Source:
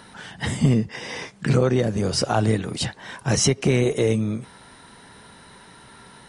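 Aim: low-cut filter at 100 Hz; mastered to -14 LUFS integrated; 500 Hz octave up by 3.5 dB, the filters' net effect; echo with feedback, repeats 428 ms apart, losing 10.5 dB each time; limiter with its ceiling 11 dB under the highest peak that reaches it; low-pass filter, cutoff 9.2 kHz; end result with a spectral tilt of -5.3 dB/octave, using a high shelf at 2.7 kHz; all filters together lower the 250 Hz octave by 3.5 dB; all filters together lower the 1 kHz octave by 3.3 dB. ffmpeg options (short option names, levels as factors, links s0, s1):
-af "highpass=100,lowpass=9200,equalizer=f=250:t=o:g=-6.5,equalizer=f=500:t=o:g=8,equalizer=f=1000:t=o:g=-8,highshelf=f=2700:g=-6,alimiter=limit=0.141:level=0:latency=1,aecho=1:1:428|856|1284:0.299|0.0896|0.0269,volume=5.01"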